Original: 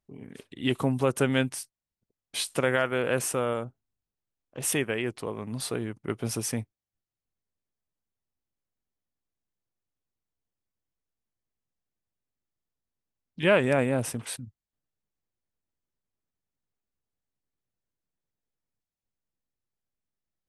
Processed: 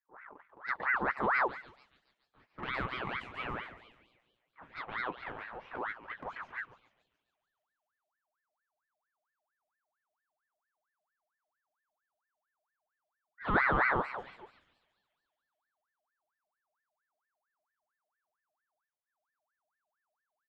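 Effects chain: LPF 1200 Hz 12 dB/oct; low-pass opened by the level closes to 630 Hz, open at -22 dBFS; 2.38–4.82 low shelf 400 Hz -8.5 dB; transient shaper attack -12 dB, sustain +2 dB; envelope flanger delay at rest 9.6 ms, full sweep at -27 dBFS; doubler 12 ms -8 dB; thinning echo 0.141 s, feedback 68%, high-pass 900 Hz, level -6 dB; ring modulator with a swept carrier 1200 Hz, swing 50%, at 4.4 Hz

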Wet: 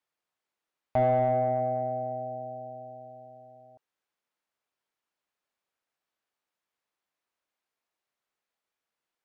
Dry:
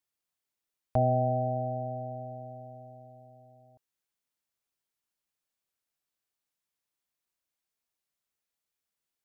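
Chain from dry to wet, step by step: overdrive pedal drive 16 dB, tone 1100 Hz, clips at -14.5 dBFS

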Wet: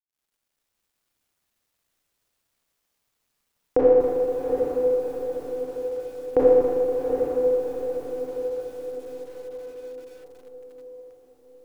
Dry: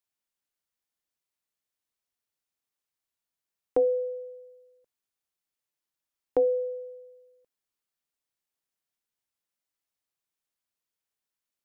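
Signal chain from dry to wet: tilt -1.5 dB/oct; in parallel at -0.5 dB: compressor 4:1, threshold -32 dBFS, peak gain reduction 11.5 dB; on the sum: diffused feedback echo 0.758 s, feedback 53%, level -5 dB; Schroeder reverb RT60 2.1 s, combs from 27 ms, DRR -8 dB; bit-crush 12-bit; lo-fi delay 0.238 s, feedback 55%, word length 7-bit, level -13.5 dB

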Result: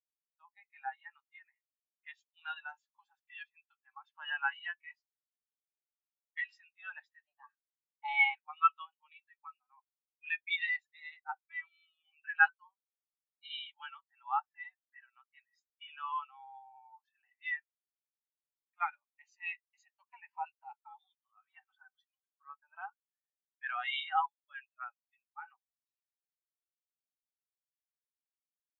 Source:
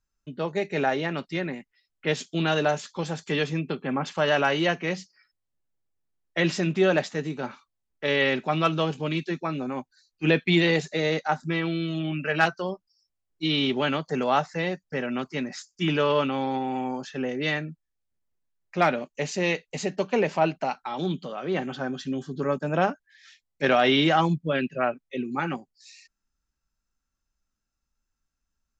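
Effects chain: 7.27–8.35 frequency shift +280 Hz; elliptic high-pass 890 Hz, stop band 80 dB; spectral expander 2.5:1; gain -3 dB

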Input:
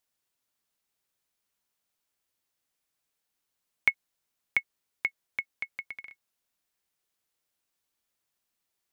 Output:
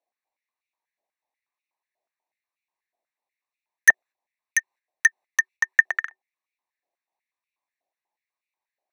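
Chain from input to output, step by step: Wiener smoothing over 25 samples; gate -53 dBFS, range -8 dB; in parallel at +1 dB: compressor, threshold -33 dBFS, peak gain reduction 14.5 dB; on the sum: sine folder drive 17 dB, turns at -3.5 dBFS; frequency shift -380 Hz; stepped high-pass 8.2 Hz 690–2400 Hz; gain -11 dB

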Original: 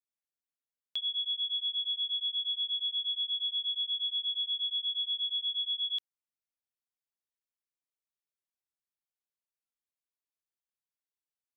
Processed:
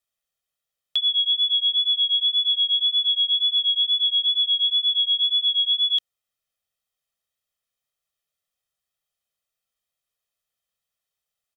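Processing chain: bell 3300 Hz +5.5 dB 0.27 oct; comb 1.6 ms, depth 69%; wow and flutter 19 cents; gain +8 dB

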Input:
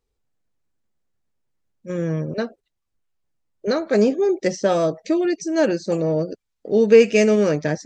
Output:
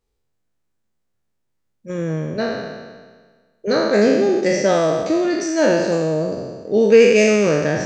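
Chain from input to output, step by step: spectral trails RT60 1.52 s

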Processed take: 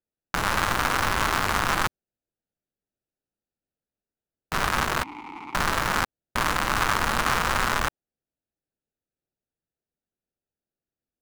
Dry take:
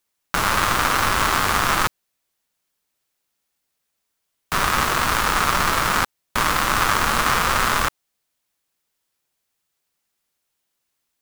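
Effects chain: Wiener smoothing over 41 samples; 5.03–5.55 vowel filter u; gain -3 dB

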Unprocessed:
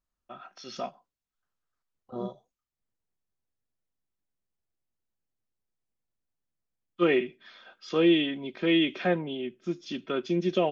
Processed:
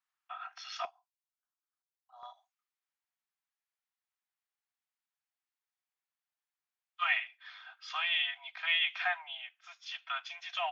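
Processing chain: steep high-pass 690 Hz 96 dB/oct; bell 1900 Hz +13 dB 2.6 oct, from 0.85 s -3.5 dB, from 2.23 s +9.5 dB; gain -7 dB

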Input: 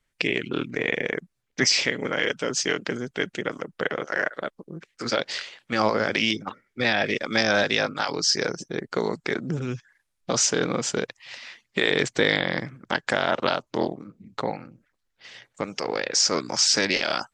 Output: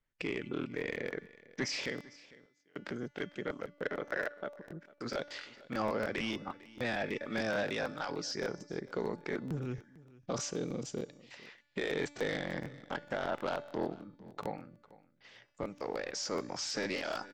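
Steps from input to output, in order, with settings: 1.97–2.74 flipped gate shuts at -25 dBFS, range -36 dB; 10.51–11.31 bell 1300 Hz -14 dB 1.7 oct; soft clip -16.5 dBFS, distortion -12 dB; LPF 8500 Hz 24 dB/oct; high shelf 2400 Hz -9 dB; echo 0.451 s -20.5 dB; 3.84–4.43 transient shaper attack +6 dB, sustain -5 dB; resonator 290 Hz, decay 1.1 s, mix 60%; crackling interface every 0.15 s, samples 1024, repeat, from 0.61

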